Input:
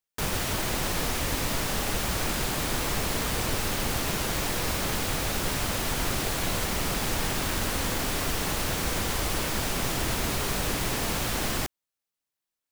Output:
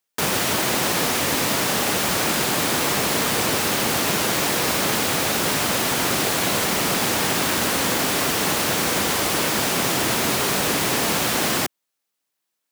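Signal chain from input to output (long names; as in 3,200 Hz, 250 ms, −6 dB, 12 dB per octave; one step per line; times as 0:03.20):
high-pass filter 170 Hz 12 dB per octave
level +8.5 dB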